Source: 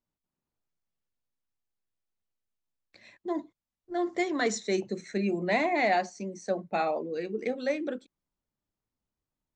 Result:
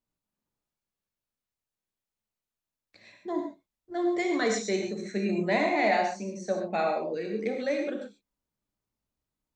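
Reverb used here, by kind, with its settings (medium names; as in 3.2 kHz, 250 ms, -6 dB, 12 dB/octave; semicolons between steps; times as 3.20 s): gated-style reverb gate 160 ms flat, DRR 2 dB; trim -1 dB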